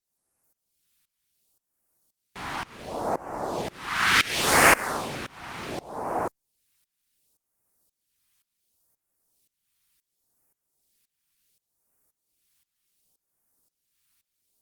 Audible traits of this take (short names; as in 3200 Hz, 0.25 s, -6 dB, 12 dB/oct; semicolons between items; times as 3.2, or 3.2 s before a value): phasing stages 2, 0.69 Hz, lowest notch 510–3400 Hz; tremolo saw up 1.9 Hz, depth 95%; Opus